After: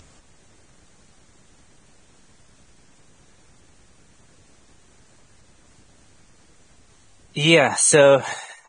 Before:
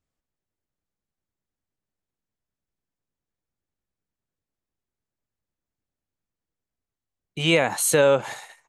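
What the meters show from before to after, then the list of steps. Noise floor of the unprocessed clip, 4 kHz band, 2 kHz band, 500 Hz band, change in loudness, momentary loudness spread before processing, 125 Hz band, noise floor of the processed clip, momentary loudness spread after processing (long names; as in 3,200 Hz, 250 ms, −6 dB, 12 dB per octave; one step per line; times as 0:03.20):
below −85 dBFS, +5.0 dB, +5.0 dB, +4.5 dB, +4.0 dB, 16 LU, +4.5 dB, −54 dBFS, 16 LU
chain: upward compression, threshold −32 dBFS
level +4.5 dB
Ogg Vorbis 16 kbit/s 22,050 Hz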